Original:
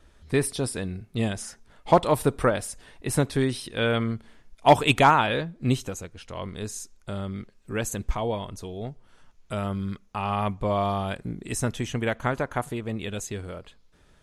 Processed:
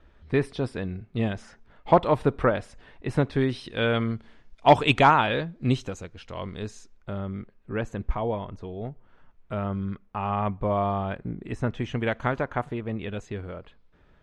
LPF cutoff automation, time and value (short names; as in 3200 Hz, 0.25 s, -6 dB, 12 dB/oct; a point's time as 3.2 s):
3.31 s 2800 Hz
3.77 s 4700 Hz
6.5 s 4700 Hz
7.23 s 2000 Hz
11.68 s 2000 Hz
12.16 s 4700 Hz
12.7 s 2500 Hz